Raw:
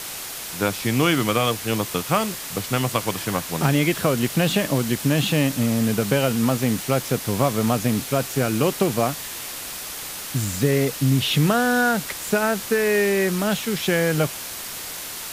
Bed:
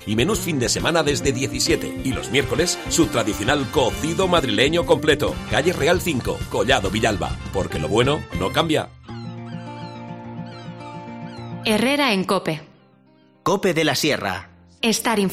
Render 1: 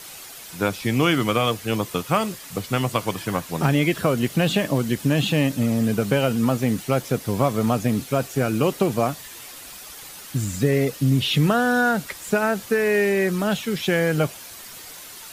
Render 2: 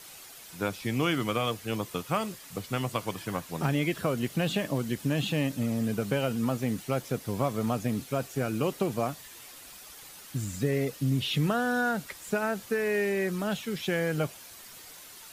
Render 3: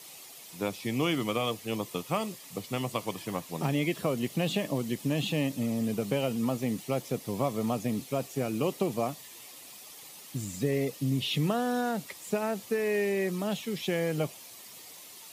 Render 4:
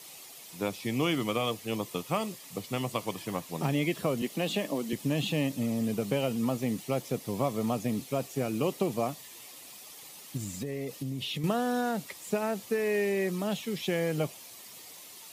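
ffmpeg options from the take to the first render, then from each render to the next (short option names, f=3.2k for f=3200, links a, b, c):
-af "afftdn=nr=9:nf=-33"
-af "volume=-8dB"
-af "highpass=130,equalizer=f=1.5k:t=o:w=0.37:g=-11.5"
-filter_complex "[0:a]asettb=1/sr,asplit=3[a][b][c];[a]atrim=end=4.224[d];[b]atrim=start=4.22:end=4.93,asetpts=PTS-STARTPTS,afade=t=in:d=0.004:c=qsin,afade=t=out:st=0.706:d=0.004:c=qsin,highpass=f=190:w=0.5412,highpass=f=190:w=1.3066[e];[c]atrim=start=4.926[f];[d][e]acrossfade=d=0.004:c1=hsin:c2=qsin[g];[g][f]acrossfade=d=0.004:c1=qsin:c2=hsin,asettb=1/sr,asplit=3[h][i][j];[h]atrim=end=10.374[k];[i]atrim=start=10.37:end=11.44,asetpts=PTS-STARTPTS,afade=t=in:d=0.004:c=qsin,afade=t=out:st=1.066:d=0.004:c=qsin,acompressor=threshold=-31dB:ratio=6:attack=3.2:release=140:knee=1:detection=peak[l];[j]atrim=start=11.436[m];[k][l]acrossfade=d=0.004:c1=hsin:c2=qsin[n];[n][m]acrossfade=d=0.004:c1=qsin:c2=hsin"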